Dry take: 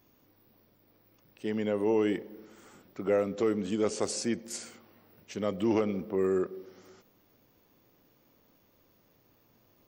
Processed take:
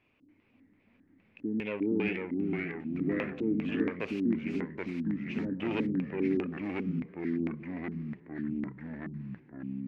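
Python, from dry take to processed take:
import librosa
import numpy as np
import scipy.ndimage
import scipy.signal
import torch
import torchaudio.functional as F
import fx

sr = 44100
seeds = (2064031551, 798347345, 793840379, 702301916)

y = fx.self_delay(x, sr, depth_ms=0.2)
y = fx.filter_lfo_lowpass(y, sr, shape='square', hz=2.5, low_hz=280.0, high_hz=2500.0, q=7.1)
y = fx.echo_pitch(y, sr, ms=287, semitones=-2, count=3, db_per_echo=-3.0)
y = F.gain(torch.from_numpy(y), -6.5).numpy()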